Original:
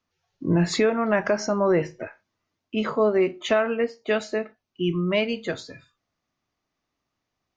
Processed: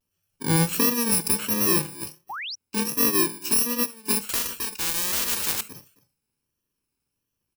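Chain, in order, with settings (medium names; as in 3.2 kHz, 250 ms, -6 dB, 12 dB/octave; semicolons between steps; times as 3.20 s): bit-reversed sample order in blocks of 64 samples; on a send: delay 275 ms -20 dB; 2.29–2.56 s: on the sum: painted sound rise 690–6200 Hz -33 dBFS; vibrato 1.4 Hz 92 cents; 4.29–5.61 s: spectrum-flattening compressor 10:1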